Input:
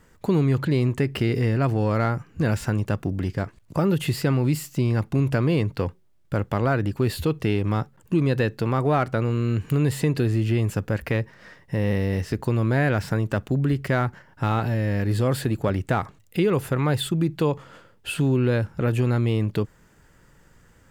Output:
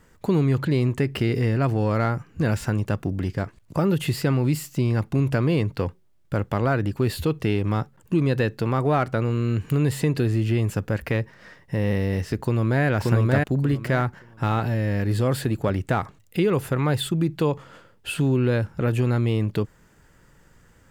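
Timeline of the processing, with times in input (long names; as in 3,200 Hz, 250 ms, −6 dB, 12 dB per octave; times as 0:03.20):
0:12.42–0:12.85: delay throw 580 ms, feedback 20%, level −0.5 dB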